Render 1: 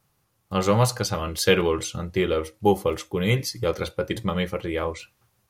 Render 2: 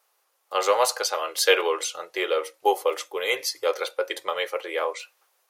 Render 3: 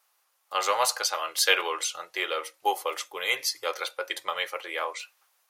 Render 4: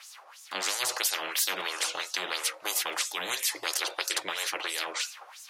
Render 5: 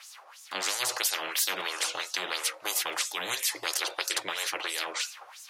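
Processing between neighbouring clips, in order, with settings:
inverse Chebyshev high-pass filter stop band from 230 Hz, stop band 40 dB; level +2.5 dB
parametric band 440 Hz −10.5 dB 1.1 octaves
auto-filter band-pass sine 3 Hz 530–7,400 Hz; every bin compressed towards the loudest bin 10 to 1
parametric band 110 Hz +10.5 dB 0.23 octaves

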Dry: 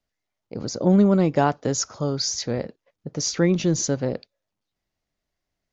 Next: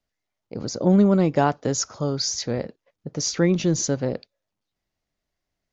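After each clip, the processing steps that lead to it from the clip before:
no processing that can be heard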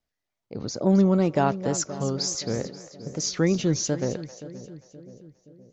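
tape wow and flutter 100 cents
echo with a time of its own for lows and highs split 560 Hz, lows 523 ms, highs 265 ms, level −14 dB
level −2.5 dB

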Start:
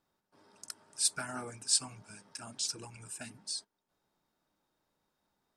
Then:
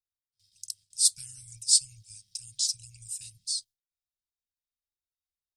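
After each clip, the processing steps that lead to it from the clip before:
noise gate with hold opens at −53 dBFS
inverse Chebyshev band-stop filter 370–1,000 Hz, stop band 80 dB
level +7.5 dB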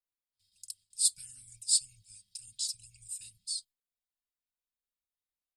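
parametric band 5,900 Hz −13.5 dB 0.24 octaves
comb filter 4 ms, depth 56%
level −4.5 dB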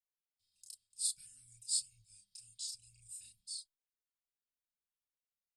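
multi-voice chorus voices 2, 0.5 Hz, delay 30 ms, depth 4.7 ms
level −5 dB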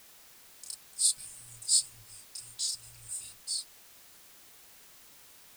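background noise white −66 dBFS
in parallel at −9.5 dB: soft clipping −34.5 dBFS, distortion −9 dB
on the sum: level +8 dB

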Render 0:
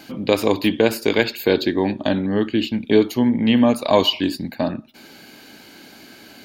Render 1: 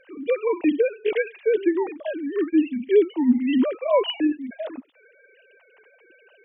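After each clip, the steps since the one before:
three sine waves on the formant tracks
level −3.5 dB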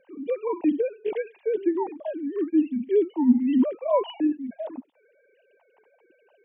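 drawn EQ curve 110 Hz 0 dB, 190 Hz +9 dB, 470 Hz +1 dB, 910 Hz +9 dB, 1,300 Hz −6 dB
level −6.5 dB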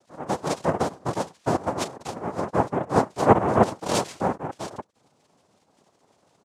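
comb filter 4.3 ms, depth 33%
cochlear-implant simulation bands 2
level −1 dB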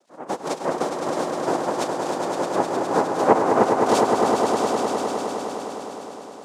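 Chebyshev high-pass filter 290 Hz, order 2
echo that builds up and dies away 103 ms, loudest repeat 5, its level −7 dB

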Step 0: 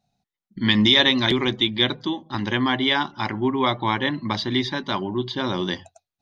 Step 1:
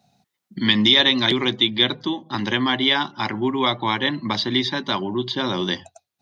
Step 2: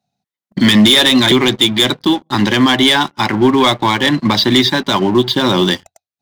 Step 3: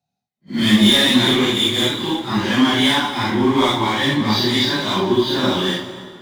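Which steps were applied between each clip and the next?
high-pass filter 110 Hz; dynamic equaliser 3,900 Hz, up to +4 dB, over −31 dBFS, Q 1.1; multiband upward and downward compressor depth 40%
leveller curve on the samples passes 3; boost into a limiter +6 dB; expander for the loud parts 1.5 to 1, over −25 dBFS; level −2 dB
random phases in long frames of 200 ms; on a send at −11 dB: convolution reverb RT60 2.3 s, pre-delay 109 ms; on the sum: level −5 dB

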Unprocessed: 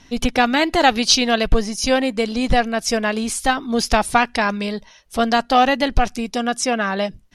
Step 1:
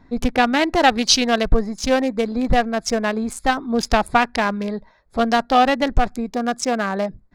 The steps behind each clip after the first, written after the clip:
adaptive Wiener filter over 15 samples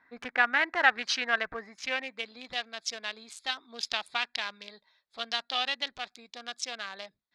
band-pass filter sweep 1,700 Hz → 3,600 Hz, 0:01.48–0:02.54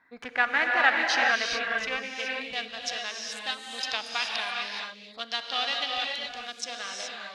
reverb whose tail is shaped and stops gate 450 ms rising, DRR −0.5 dB

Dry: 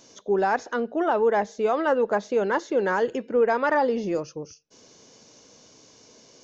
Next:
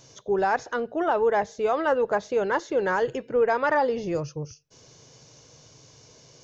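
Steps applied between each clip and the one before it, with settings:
low shelf with overshoot 170 Hz +7 dB, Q 3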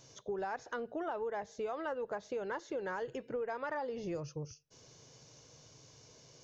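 downward compressor, threshold −29 dBFS, peak gain reduction 11 dB
level −6.5 dB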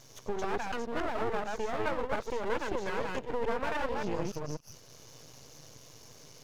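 delay that plays each chunk backwards 144 ms, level −1 dB
half-wave rectification
level +7.5 dB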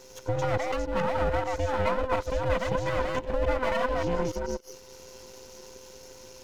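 frequency inversion band by band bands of 500 Hz
level +4 dB

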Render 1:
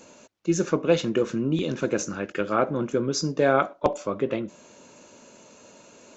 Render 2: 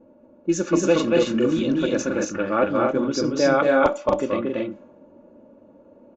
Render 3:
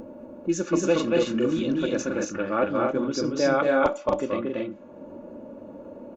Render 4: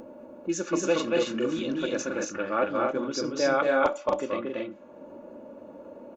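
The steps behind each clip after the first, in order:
low-pass that shuts in the quiet parts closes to 500 Hz, open at −18.5 dBFS; comb filter 3.5 ms, depth 51%; loudspeakers that aren't time-aligned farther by 79 metres −2 dB, 93 metres −4 dB
upward compression, threshold −25 dBFS; level −3.5 dB
low-shelf EQ 280 Hz −10 dB

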